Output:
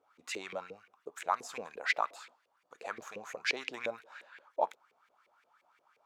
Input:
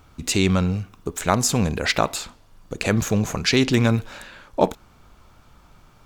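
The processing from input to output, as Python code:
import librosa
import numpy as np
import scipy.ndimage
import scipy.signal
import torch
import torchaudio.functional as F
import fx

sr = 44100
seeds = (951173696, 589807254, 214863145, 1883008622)

y = fx.filter_lfo_bandpass(x, sr, shape='saw_up', hz=5.7, low_hz=420.0, high_hz=2400.0, q=4.3)
y = fx.riaa(y, sr, side='recording')
y = y * 10.0 ** (-4.5 / 20.0)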